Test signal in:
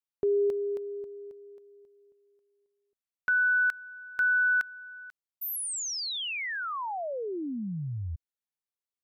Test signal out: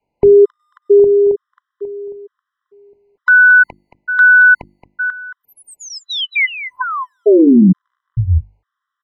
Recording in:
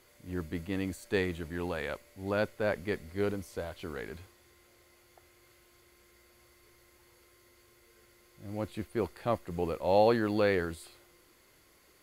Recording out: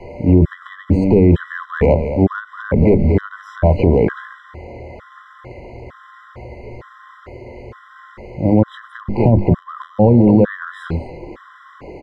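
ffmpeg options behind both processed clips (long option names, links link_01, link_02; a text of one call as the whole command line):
ffmpeg -i in.wav -filter_complex "[0:a]lowpass=1100,bandreject=frequency=50:width_type=h:width=6,bandreject=frequency=100:width_type=h:width=6,bandreject=frequency=150:width_type=h:width=6,bandreject=frequency=200:width_type=h:width=6,bandreject=frequency=250:width_type=h:width=6,bandreject=frequency=300:width_type=h:width=6,bandreject=frequency=350:width_type=h:width=6,adynamicequalizer=threshold=0.00398:dfrequency=310:dqfactor=3:tfrequency=310:tqfactor=3:attack=5:release=100:ratio=0.375:range=2.5:mode=cutabove:tftype=bell,acrossover=split=270[link_01][link_02];[link_01]asplit=2[link_03][link_04];[link_04]adelay=25,volume=-10dB[link_05];[link_03][link_05]amix=inputs=2:normalize=0[link_06];[link_02]acompressor=threshold=-40dB:ratio=6:attack=0.27:release=252:knee=6:detection=peak[link_07];[link_06][link_07]amix=inputs=2:normalize=0,aecho=1:1:224:0.251,alimiter=level_in=35.5dB:limit=-1dB:release=50:level=0:latency=1,afftfilt=real='re*gt(sin(2*PI*1.1*pts/sr)*(1-2*mod(floor(b*sr/1024/1000),2)),0)':imag='im*gt(sin(2*PI*1.1*pts/sr)*(1-2*mod(floor(b*sr/1024/1000),2)),0)':win_size=1024:overlap=0.75,volume=-1.5dB" out.wav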